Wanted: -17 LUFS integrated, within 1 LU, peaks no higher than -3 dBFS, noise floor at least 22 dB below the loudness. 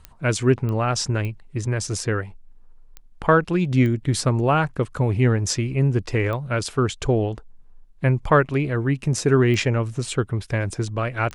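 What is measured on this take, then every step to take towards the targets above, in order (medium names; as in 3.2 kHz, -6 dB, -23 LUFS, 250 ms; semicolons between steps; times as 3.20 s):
clicks found 8; loudness -22.0 LUFS; peak level -3.5 dBFS; loudness target -17.0 LUFS
-> de-click; trim +5 dB; peak limiter -3 dBFS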